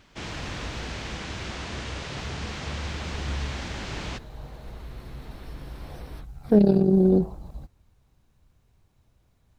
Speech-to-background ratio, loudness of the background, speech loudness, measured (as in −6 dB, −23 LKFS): 13.5 dB, −34.0 LKFS, −20.5 LKFS